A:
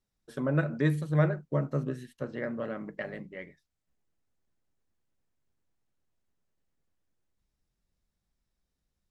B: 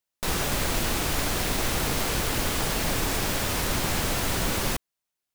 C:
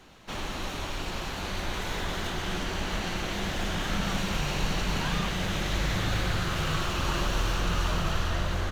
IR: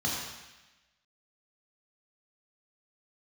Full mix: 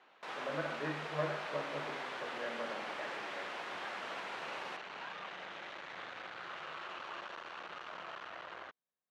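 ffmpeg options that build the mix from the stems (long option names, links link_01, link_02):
-filter_complex "[0:a]volume=-5.5dB,asplit=2[link_01][link_02];[link_02]volume=-9.5dB[link_03];[1:a]volume=-11.5dB[link_04];[2:a]asoftclip=type=tanh:threshold=-30dB,volume=-5.5dB[link_05];[3:a]atrim=start_sample=2205[link_06];[link_03][link_06]afir=irnorm=-1:irlink=0[link_07];[link_01][link_04][link_05][link_07]amix=inputs=4:normalize=0,highpass=600,lowpass=2400"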